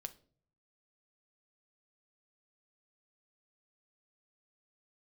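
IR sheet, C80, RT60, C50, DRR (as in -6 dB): 23.5 dB, no single decay rate, 18.0 dB, 8.0 dB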